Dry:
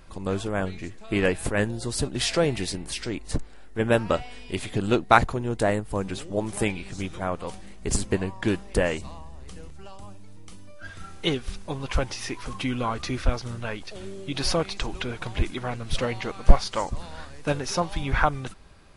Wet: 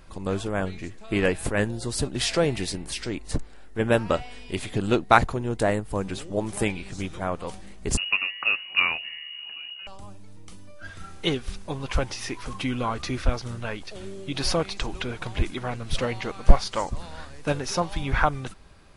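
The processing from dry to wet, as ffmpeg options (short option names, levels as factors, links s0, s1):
-filter_complex "[0:a]asettb=1/sr,asplit=3[s0][s1][s2];[s0]atrim=end=7.974[s3];[s1]atrim=start=7.97:end=9.87,asetpts=PTS-STARTPTS,afade=t=in:d=0.004:c=qsin,afade=t=out:st=1.896:d=0.004:c=qsin,lowpass=f=2500:t=q:w=0.5098,lowpass=f=2500:t=q:w=0.6013,lowpass=f=2500:t=q:w=0.9,lowpass=f=2500:t=q:w=2.563,afreqshift=-2900[s4];[s2]atrim=start=9.866[s5];[s3][s4]acrossfade=d=0.004:c1=hsin:c2=qsin[s6];[s6][s5]acrossfade=d=0.004:c1=qsin:c2=hsin"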